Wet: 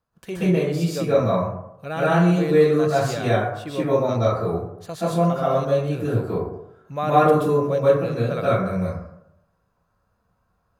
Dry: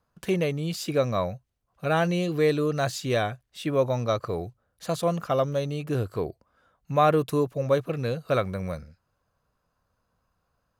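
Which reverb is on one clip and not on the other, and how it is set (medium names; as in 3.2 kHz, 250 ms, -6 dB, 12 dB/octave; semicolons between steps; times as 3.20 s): plate-style reverb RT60 0.8 s, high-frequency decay 0.35×, pre-delay 115 ms, DRR -9.5 dB; trim -6 dB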